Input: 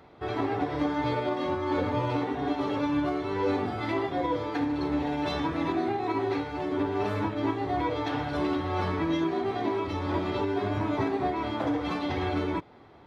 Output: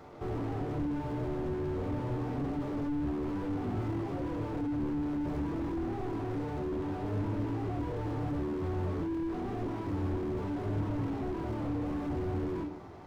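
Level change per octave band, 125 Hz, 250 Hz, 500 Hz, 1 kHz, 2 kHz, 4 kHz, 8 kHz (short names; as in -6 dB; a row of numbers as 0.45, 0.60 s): 0.0 dB, -4.5 dB, -7.5 dB, -11.5 dB, -12.5 dB, -16.0 dB, n/a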